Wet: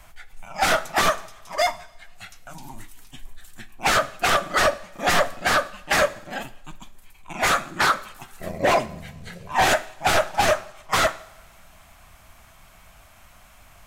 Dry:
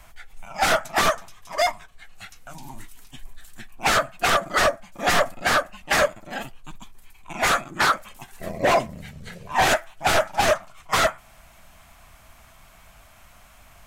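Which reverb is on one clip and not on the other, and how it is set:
coupled-rooms reverb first 0.57 s, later 1.8 s, from −16 dB, DRR 13.5 dB

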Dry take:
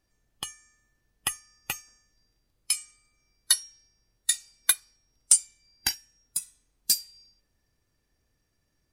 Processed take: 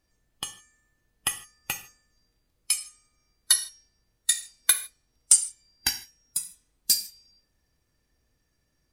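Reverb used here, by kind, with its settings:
reverb whose tail is shaped and stops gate 180 ms falling, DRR 8 dB
level +1 dB

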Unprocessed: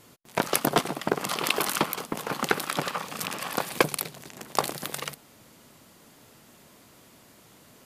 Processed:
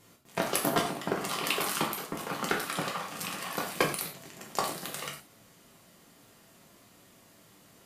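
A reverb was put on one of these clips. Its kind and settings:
reverb whose tail is shaped and stops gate 140 ms falling, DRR −1 dB
level −7 dB

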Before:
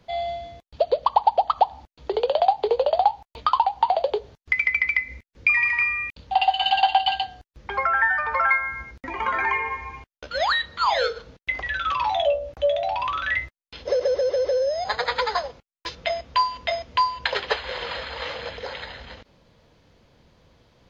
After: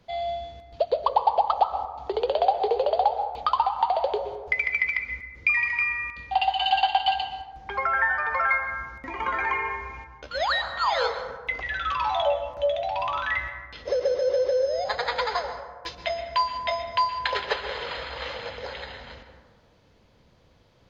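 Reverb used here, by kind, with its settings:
dense smooth reverb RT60 1.4 s, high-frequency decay 0.35×, pre-delay 110 ms, DRR 7.5 dB
level −3 dB

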